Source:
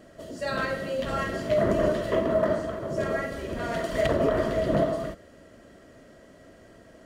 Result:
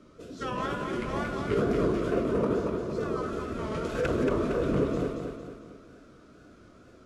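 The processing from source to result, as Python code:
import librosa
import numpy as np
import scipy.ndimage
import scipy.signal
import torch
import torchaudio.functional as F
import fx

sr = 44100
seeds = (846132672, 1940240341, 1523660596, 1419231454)

y = fx.wow_flutter(x, sr, seeds[0], rate_hz=2.1, depth_cents=130.0)
y = fx.formant_shift(y, sr, semitones=-5)
y = fx.echo_feedback(y, sr, ms=229, feedback_pct=45, wet_db=-4.5)
y = y * 10.0 ** (-3.5 / 20.0)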